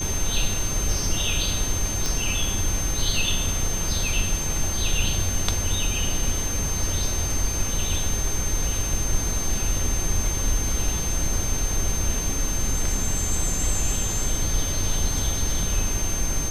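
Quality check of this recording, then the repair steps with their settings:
whine 6.3 kHz -28 dBFS
2.06 s: pop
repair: de-click; band-stop 6.3 kHz, Q 30

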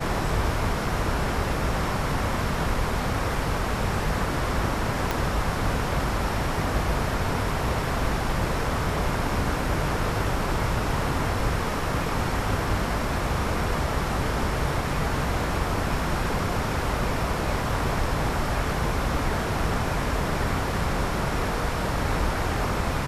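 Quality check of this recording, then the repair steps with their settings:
5.11 s: pop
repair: de-click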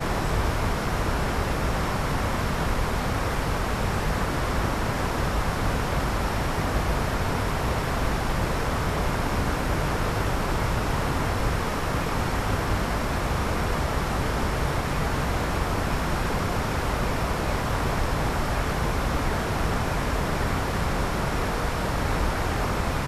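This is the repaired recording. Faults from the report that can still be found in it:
5.11 s: pop

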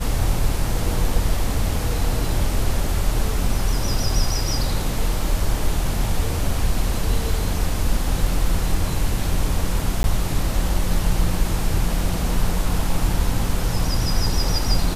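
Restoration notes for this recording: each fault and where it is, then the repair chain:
10.03–10.04 s: dropout 11 ms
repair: interpolate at 10.03 s, 11 ms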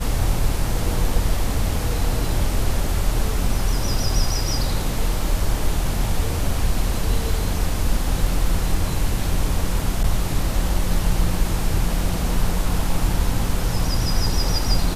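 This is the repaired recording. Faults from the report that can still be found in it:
nothing left

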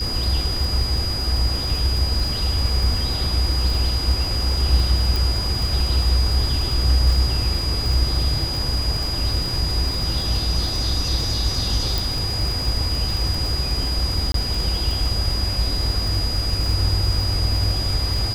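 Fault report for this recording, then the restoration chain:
crackle 41 per s -24 dBFS
whine 4.9 kHz -25 dBFS
5.16 s: pop
11.98 s: pop
14.32–14.34 s: dropout 23 ms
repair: de-click; band-stop 4.9 kHz, Q 30; interpolate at 14.32 s, 23 ms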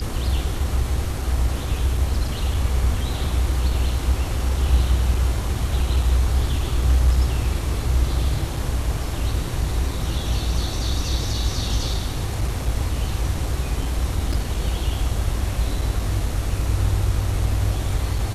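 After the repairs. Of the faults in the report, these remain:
nothing left

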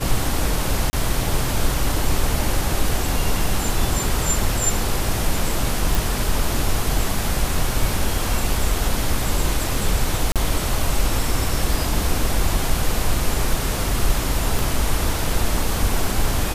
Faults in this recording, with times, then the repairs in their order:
0.90–0.93 s: dropout 30 ms
5.95 s: pop
10.32–10.36 s: dropout 37 ms
14.59 s: pop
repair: de-click; interpolate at 0.90 s, 30 ms; interpolate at 10.32 s, 37 ms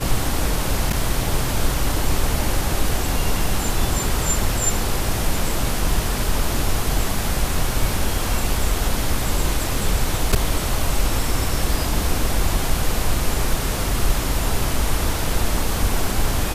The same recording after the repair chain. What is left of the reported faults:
14.59 s: pop

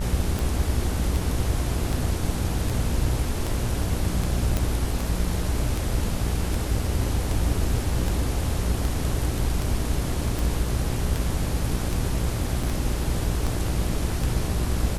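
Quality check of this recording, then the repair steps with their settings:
buzz 60 Hz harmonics 29 -29 dBFS
tick 78 rpm
4.57 s: pop
12.63 s: dropout 4.4 ms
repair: de-click; de-hum 60 Hz, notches 29; interpolate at 12.63 s, 4.4 ms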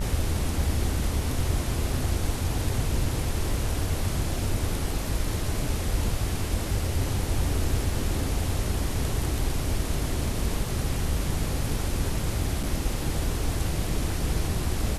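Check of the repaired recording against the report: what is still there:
nothing left

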